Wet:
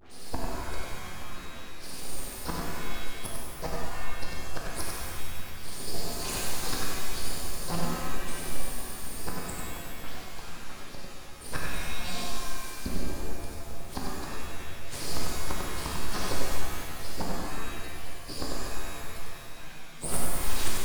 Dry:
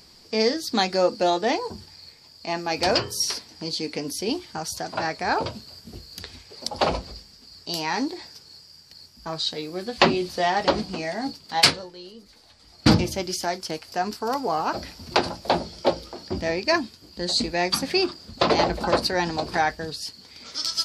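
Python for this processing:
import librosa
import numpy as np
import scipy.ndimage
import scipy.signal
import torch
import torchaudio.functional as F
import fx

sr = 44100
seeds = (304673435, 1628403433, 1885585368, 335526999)

p1 = fx.spec_delay(x, sr, highs='late', ms=189)
p2 = fx.hum_notches(p1, sr, base_hz=50, count=5)
p3 = fx.gate_flip(p2, sr, shuts_db=-24.0, range_db=-32)
p4 = np.abs(p3)
p5 = p4 + fx.echo_single(p4, sr, ms=97, db=-5.0, dry=0)
p6 = fx.rev_shimmer(p5, sr, seeds[0], rt60_s=1.9, semitones=7, shimmer_db=-2, drr_db=-2.5)
y = F.gain(torch.from_numpy(p6), 5.5).numpy()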